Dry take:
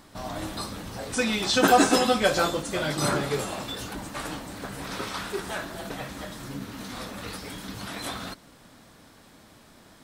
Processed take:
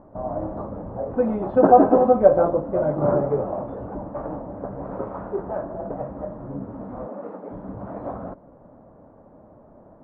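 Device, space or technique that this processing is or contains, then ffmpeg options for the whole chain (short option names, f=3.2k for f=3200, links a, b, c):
under water: -filter_complex "[0:a]asettb=1/sr,asplit=3[a][b][c];[a]atrim=end=7.064[d];[b]atrim=start=7.06:end=7.51,asetpts=PTS-STARTPTS,afade=t=in:d=0.004:c=qsin,afade=t=out:st=0.446:d=0.004:c=qsin,highpass=f=210:w=0.5412,highpass=f=210:w=1.3066[e];[c]atrim=start=7.506[f];[d][e]acrossfade=d=0.004:c1=hsin:c2=qsin[g];[g][f]acrossfade=d=0.004:c1=qsin:c2=hsin,lowpass=f=980:w=0.5412,lowpass=f=980:w=1.3066,equalizer=f=580:t=o:w=0.52:g=8,volume=3.5dB"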